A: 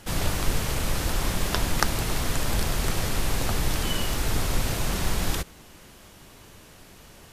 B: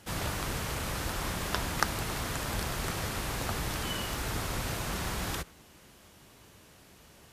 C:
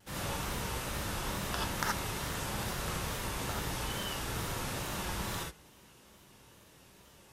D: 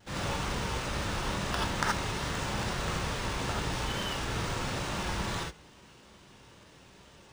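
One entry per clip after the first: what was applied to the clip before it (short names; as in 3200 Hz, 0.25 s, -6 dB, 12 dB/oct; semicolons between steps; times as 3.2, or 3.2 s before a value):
HPF 47 Hz; dynamic EQ 1300 Hz, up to +4 dB, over -43 dBFS, Q 0.85; gain -6.5 dB
non-linear reverb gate 0.1 s rising, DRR -3.5 dB; vibrato 2.3 Hz 70 cents; gain -7.5 dB
decimation joined by straight lines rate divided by 3×; gain +4 dB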